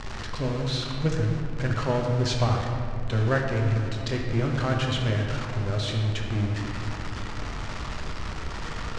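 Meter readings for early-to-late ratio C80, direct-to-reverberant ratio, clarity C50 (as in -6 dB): 4.0 dB, 0.0 dB, 2.5 dB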